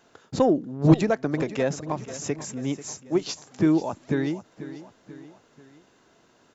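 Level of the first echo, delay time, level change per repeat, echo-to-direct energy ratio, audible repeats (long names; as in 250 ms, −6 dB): −15.0 dB, 489 ms, −6.0 dB, −14.0 dB, 3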